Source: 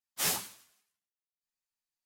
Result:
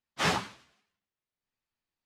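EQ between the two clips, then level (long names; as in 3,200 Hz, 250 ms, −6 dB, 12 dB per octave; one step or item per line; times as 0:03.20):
low-pass filter 3,600 Hz 12 dB per octave
dynamic equaliser 1,200 Hz, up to +5 dB, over −51 dBFS, Q 1.1
low-shelf EQ 370 Hz +7.5 dB
+5.5 dB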